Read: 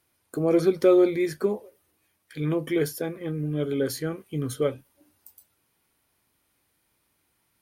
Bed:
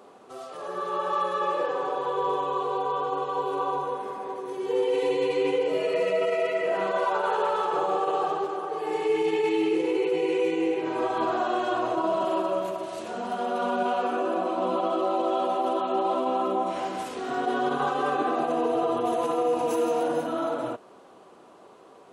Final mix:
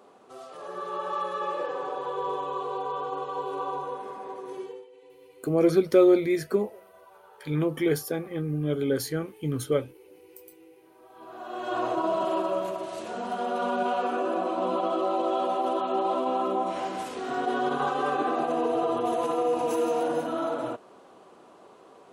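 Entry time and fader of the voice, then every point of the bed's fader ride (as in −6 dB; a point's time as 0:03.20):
5.10 s, 0.0 dB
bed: 0:04.60 −4 dB
0:04.89 −28 dB
0:11.02 −28 dB
0:11.79 −1 dB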